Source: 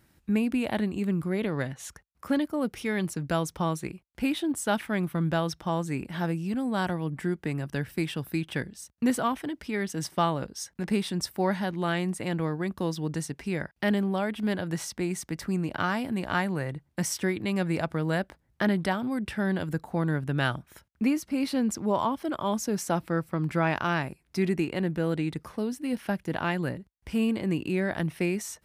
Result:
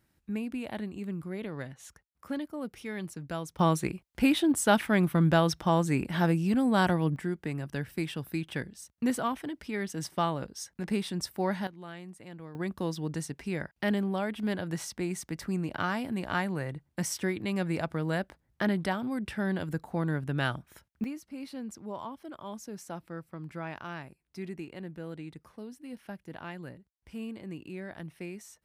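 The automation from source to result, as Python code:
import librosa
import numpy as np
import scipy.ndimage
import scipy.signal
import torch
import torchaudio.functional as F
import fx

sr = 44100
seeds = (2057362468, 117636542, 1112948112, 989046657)

y = fx.gain(x, sr, db=fx.steps((0.0, -8.5), (3.59, 3.5), (7.16, -3.5), (11.67, -16.0), (12.55, -3.0), (21.04, -13.0)))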